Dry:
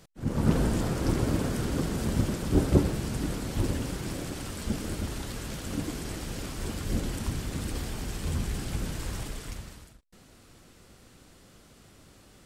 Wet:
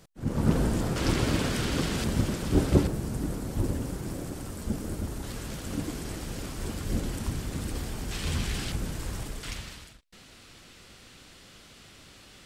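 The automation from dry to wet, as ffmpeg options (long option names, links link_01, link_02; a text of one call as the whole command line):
ffmpeg -i in.wav -af "asetnsamples=nb_out_samples=441:pad=0,asendcmd='0.96 equalizer g 9.5;2.04 equalizer g 2.5;2.87 equalizer g -8;5.24 equalizer g -1.5;8.11 equalizer g 8.5;8.72 equalizer g -1.5;9.43 equalizer g 10',equalizer=frequency=3100:width_type=o:width=2.3:gain=-1" out.wav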